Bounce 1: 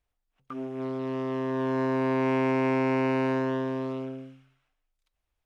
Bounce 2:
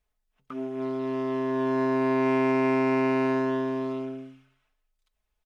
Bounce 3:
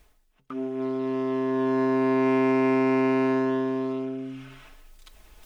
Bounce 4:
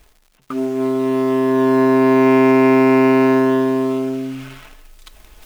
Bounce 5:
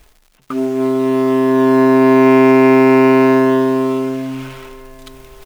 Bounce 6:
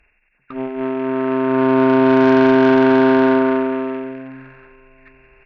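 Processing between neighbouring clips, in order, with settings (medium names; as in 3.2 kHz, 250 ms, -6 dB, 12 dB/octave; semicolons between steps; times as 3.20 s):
comb 4.7 ms, depth 59%
peaking EQ 320 Hz +12 dB 0.24 oct; reverse; upward compressor, threshold -28 dBFS; reverse
in parallel at -8 dB: bit crusher 7-bit; on the sum: crackle 190 per s -48 dBFS; trim +7 dB
feedback delay 758 ms, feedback 41%, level -20 dB; trim +3 dB
knee-point frequency compression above 1.4 kHz 4:1; Chebyshev shaper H 2 -13 dB, 6 -34 dB, 7 -21 dB, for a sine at 0 dBFS; trim -3.5 dB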